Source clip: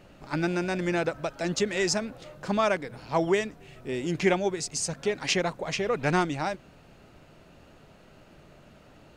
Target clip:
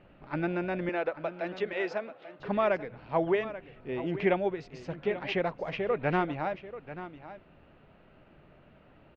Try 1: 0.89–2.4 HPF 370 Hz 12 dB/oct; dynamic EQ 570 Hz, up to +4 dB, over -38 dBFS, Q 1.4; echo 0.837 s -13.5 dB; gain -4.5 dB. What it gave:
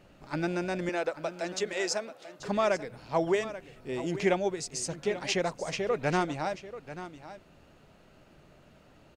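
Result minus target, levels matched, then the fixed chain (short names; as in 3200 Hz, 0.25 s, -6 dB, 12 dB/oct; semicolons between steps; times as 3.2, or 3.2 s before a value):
4000 Hz band +6.5 dB
0.89–2.4 HPF 370 Hz 12 dB/oct; dynamic EQ 570 Hz, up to +4 dB, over -38 dBFS, Q 1.4; LPF 3000 Hz 24 dB/oct; echo 0.837 s -13.5 dB; gain -4.5 dB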